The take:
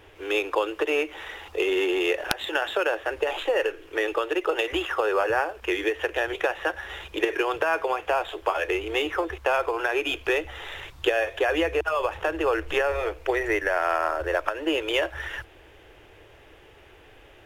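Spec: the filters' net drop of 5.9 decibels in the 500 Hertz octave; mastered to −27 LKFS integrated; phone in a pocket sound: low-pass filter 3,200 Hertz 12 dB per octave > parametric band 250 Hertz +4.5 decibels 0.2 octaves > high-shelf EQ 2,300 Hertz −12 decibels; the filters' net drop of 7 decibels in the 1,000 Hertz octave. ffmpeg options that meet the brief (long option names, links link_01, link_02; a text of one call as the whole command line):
ffmpeg -i in.wav -af "lowpass=3200,equalizer=frequency=250:width_type=o:width=0.2:gain=4.5,equalizer=frequency=500:width_type=o:gain=-5.5,equalizer=frequency=1000:width_type=o:gain=-5,highshelf=frequency=2300:gain=-12,volume=5.5dB" out.wav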